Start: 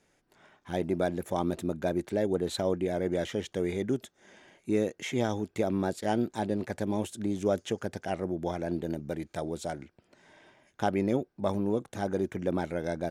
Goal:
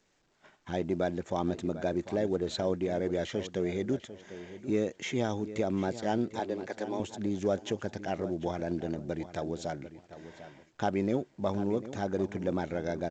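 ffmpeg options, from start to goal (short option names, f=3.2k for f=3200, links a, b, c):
-filter_complex "[0:a]asplit=2[a][b];[b]acompressor=threshold=-41dB:ratio=12,volume=-3dB[c];[a][c]amix=inputs=2:normalize=0,asettb=1/sr,asplit=3[d][e][f];[d]atrim=end=6.394[g];[e]atrim=start=6.39:end=7,asetpts=PTS-STARTPTS,afade=t=in:d=0.004:c=qsin,afade=t=out:st=0.606:d=0.004:c=qsin,highpass=f=300:w=0.5412,highpass=f=300:w=1.3066[h];[f]atrim=start=6.996[i];[g][h]acrossfade=d=0.004:c1=hsin:c2=qsin[j];[j][i]acrossfade=d=0.004:c1=qsin:c2=hsin,asplit=2[k][l];[l]adelay=747,lowpass=f=3.6k:p=1,volume=-13.5dB,asplit=2[m][n];[n]adelay=747,lowpass=f=3.6k:p=1,volume=0.24,asplit=2[o][p];[p]adelay=747,lowpass=f=3.6k:p=1,volume=0.24[q];[m][o][q]amix=inputs=3:normalize=0[r];[k][r]amix=inputs=2:normalize=0,agate=range=-18dB:threshold=-53dB:ratio=16:detection=peak,acontrast=72,volume=-9dB" -ar 16000 -c:a pcm_alaw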